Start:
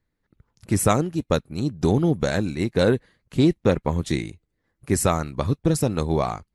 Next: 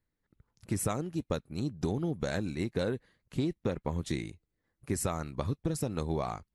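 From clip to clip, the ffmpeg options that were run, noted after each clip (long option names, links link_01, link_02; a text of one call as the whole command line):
ffmpeg -i in.wav -af "acompressor=threshold=-20dB:ratio=6,volume=-7dB" out.wav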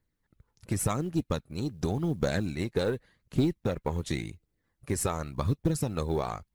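ffmpeg -i in.wav -af "aphaser=in_gain=1:out_gain=1:delay=2.5:decay=0.32:speed=0.89:type=triangular,aeval=exprs='0.188*(cos(1*acos(clip(val(0)/0.188,-1,1)))-cos(1*PI/2))+0.0188*(cos(5*acos(clip(val(0)/0.188,-1,1)))-cos(5*PI/2))+0.00596*(cos(6*acos(clip(val(0)/0.188,-1,1)))-cos(6*PI/2))+0.0133*(cos(7*acos(clip(val(0)/0.188,-1,1)))-cos(7*PI/2))':channel_layout=same,acrusher=bits=9:mode=log:mix=0:aa=0.000001,volume=2dB" out.wav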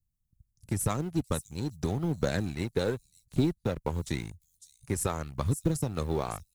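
ffmpeg -i in.wav -filter_complex "[0:a]acrossover=split=180|5800[link_01][link_02][link_03];[link_02]aeval=exprs='sgn(val(0))*max(abs(val(0))-0.00596,0)':channel_layout=same[link_04];[link_03]aecho=1:1:555:0.473[link_05];[link_01][link_04][link_05]amix=inputs=3:normalize=0" out.wav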